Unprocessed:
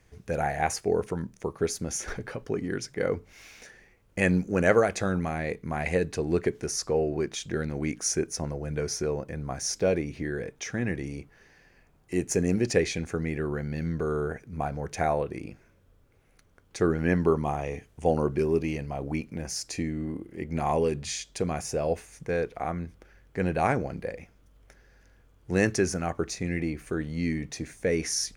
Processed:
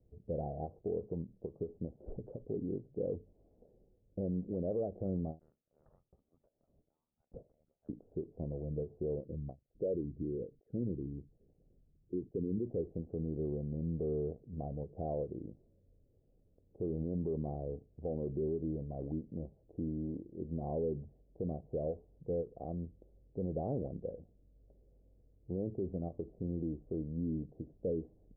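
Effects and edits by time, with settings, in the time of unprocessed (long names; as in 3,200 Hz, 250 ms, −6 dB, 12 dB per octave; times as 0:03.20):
0:05.39–0:07.89: voice inversion scrambler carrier 3,800 Hz
0:09.15–0:12.66: spectral envelope exaggerated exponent 2
whole clip: Butterworth low-pass 620 Hz 36 dB per octave; brickwall limiter −21.5 dBFS; every ending faded ahead of time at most 280 dB per second; level −6 dB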